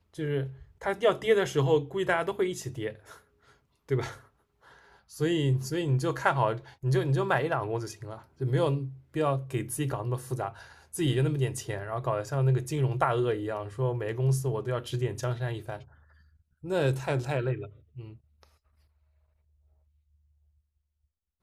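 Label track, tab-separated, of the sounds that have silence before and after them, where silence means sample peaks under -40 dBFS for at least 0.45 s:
3.890000	4.170000	sound
5.130000	15.820000	sound
16.640000	18.430000	sound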